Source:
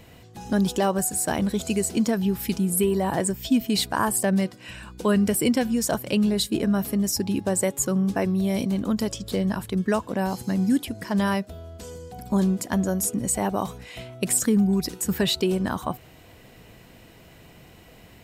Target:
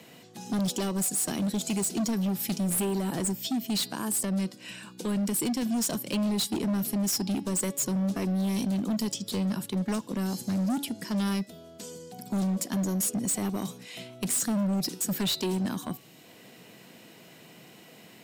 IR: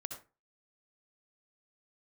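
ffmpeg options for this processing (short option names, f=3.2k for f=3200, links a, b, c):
-filter_complex "[0:a]asettb=1/sr,asplit=3[a][b][c];[a]atrim=end=3.334[d];[b]atrim=start=3.33:end=5.62,asetpts=PTS-STARTPTS,afade=t=in:d=0.004:c=qsin,afade=t=out:st=2.286:d=0.004:c=qsin,acompressor=threshold=-21dB:ratio=6[e];[c]atrim=start=5.616[f];[d][e]acrossfade=d=0.004:c1=hsin:c2=qsin[g];[g][f]acrossfade=d=0.004:c1=qsin:c2=hsin,highpass=f=160:w=0.5412,highpass=f=160:w=1.3066,aemphasis=mode=reproduction:type=cd,acrossover=split=360|3000[h][i][j];[i]acompressor=threshold=-59dB:ratio=1.5[k];[h][k][j]amix=inputs=3:normalize=0,highshelf=f=3.5k:g=10.5,volume=25dB,asoftclip=hard,volume=-25dB,bandreject=f=282.3:t=h:w=4,bandreject=f=564.6:t=h:w=4,bandreject=f=846.9:t=h:w=4,bandreject=f=1.1292k:t=h:w=4,bandreject=f=1.4115k:t=h:w=4,bandreject=f=1.6938k:t=h:w=4,bandreject=f=1.9761k:t=h:w=4,bandreject=f=2.2584k:t=h:w=4,bandreject=f=2.5407k:t=h:w=4,bandreject=f=2.823k:t=h:w=4,bandreject=f=3.1053k:t=h:w=4,bandreject=f=3.3876k:t=h:w=4,bandreject=f=3.6699k:t=h:w=4,bandreject=f=3.9522k:t=h:w=4,bandreject=f=4.2345k:t=h:w=4,bandreject=f=4.5168k:t=h:w=4,bandreject=f=4.7991k:t=h:w=4,bandreject=f=5.0814k:t=h:w=4,bandreject=f=5.3637k:t=h:w=4,bandreject=f=5.646k:t=h:w=4"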